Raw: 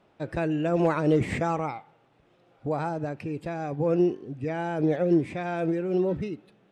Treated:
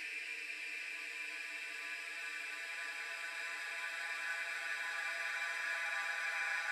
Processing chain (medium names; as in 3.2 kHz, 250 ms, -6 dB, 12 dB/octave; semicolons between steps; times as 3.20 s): high-pass 1.4 kHz 24 dB/octave; FDN reverb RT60 0.33 s, low-frequency decay 1.35×, high-frequency decay 0.35×, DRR 1.5 dB; reverb removal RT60 1.1 s; Paulstretch 39×, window 0.50 s, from 3.30 s; trim +8 dB